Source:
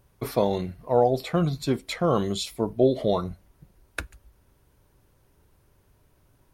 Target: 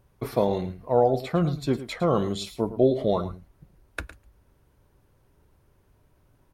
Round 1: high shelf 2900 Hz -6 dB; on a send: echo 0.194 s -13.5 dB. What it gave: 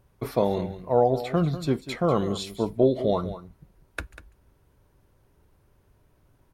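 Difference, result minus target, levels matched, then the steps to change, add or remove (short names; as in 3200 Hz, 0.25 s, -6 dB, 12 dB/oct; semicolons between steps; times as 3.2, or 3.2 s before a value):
echo 85 ms late
change: echo 0.109 s -13.5 dB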